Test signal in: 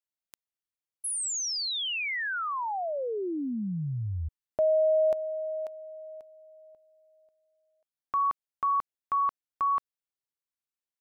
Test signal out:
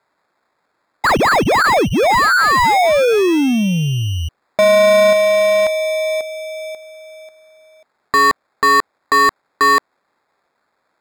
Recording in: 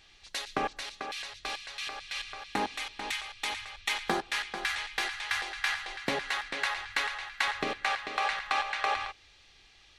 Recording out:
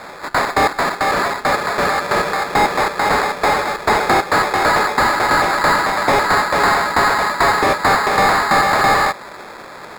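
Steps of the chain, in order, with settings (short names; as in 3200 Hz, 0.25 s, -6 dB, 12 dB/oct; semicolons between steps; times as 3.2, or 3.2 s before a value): sample-and-hold 15×; overdrive pedal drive 27 dB, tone 2800 Hz, clips at -13.5 dBFS; gain +8.5 dB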